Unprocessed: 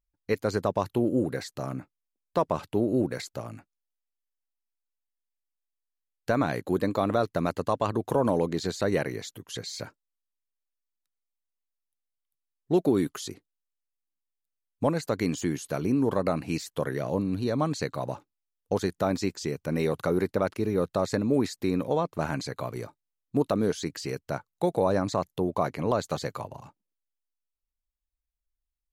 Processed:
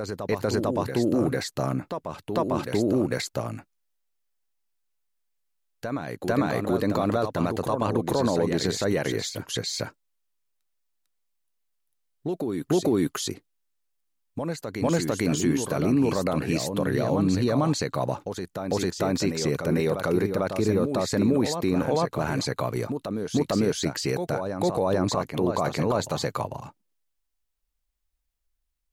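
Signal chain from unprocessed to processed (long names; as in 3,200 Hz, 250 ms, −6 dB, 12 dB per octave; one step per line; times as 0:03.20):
brickwall limiter −21 dBFS, peak gain reduction 9 dB
backwards echo 449 ms −6.5 dB
level +7 dB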